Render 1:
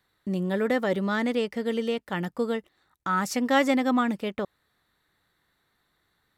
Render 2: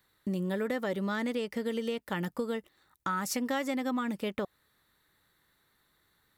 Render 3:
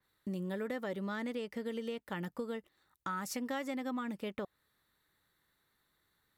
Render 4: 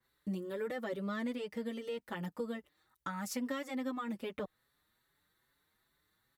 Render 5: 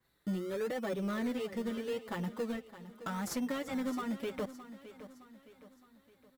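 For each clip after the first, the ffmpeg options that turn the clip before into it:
-af "highshelf=f=9600:g=10,acompressor=threshold=0.0355:ratio=6,bandreject=f=720:w=13"
-af "adynamicequalizer=threshold=0.00282:dfrequency=3600:dqfactor=0.7:tfrequency=3600:tqfactor=0.7:attack=5:release=100:ratio=0.375:range=1.5:mode=cutabove:tftype=highshelf,volume=0.501"
-filter_complex "[0:a]asplit=2[s0][s1];[s1]adelay=5.7,afreqshift=2.4[s2];[s0][s2]amix=inputs=2:normalize=1,volume=1.33"
-filter_complex "[0:a]asplit=2[s0][s1];[s1]acrusher=samples=21:mix=1:aa=0.000001:lfo=1:lforange=12.6:lforate=0.81,volume=0.447[s2];[s0][s2]amix=inputs=2:normalize=0,asoftclip=type=tanh:threshold=0.0335,aecho=1:1:615|1230|1845|2460:0.2|0.0918|0.0422|0.0194,volume=1.19"

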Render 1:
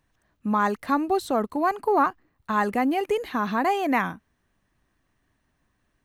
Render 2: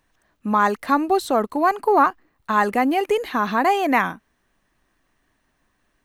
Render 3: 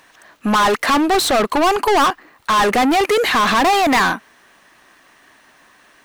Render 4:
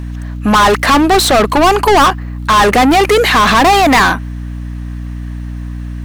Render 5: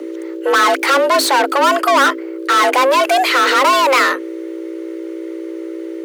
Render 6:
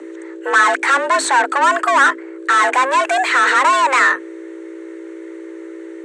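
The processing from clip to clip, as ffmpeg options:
-af "equalizer=f=94:t=o:w=2.2:g=-8.5,volume=1.88"
-filter_complex "[0:a]asplit=2[s0][s1];[s1]highpass=f=720:p=1,volume=35.5,asoftclip=type=tanh:threshold=0.596[s2];[s0][s2]amix=inputs=2:normalize=0,lowpass=f=7200:p=1,volume=0.501,volume=0.668"
-af "aeval=exprs='val(0)+0.0447*(sin(2*PI*60*n/s)+sin(2*PI*2*60*n/s)/2+sin(2*PI*3*60*n/s)/3+sin(2*PI*4*60*n/s)/4+sin(2*PI*5*60*n/s)/5)':c=same,volume=2"
-af "afreqshift=270,volume=0.631"
-af "highpass=310,equalizer=f=540:t=q:w=4:g=-7,equalizer=f=940:t=q:w=4:g=4,equalizer=f=1700:t=q:w=4:g=9,equalizer=f=3100:t=q:w=4:g=-4,equalizer=f=4900:t=q:w=4:g=-10,equalizer=f=8000:t=q:w=4:g=10,lowpass=f=8100:w=0.5412,lowpass=f=8100:w=1.3066,volume=0.708"

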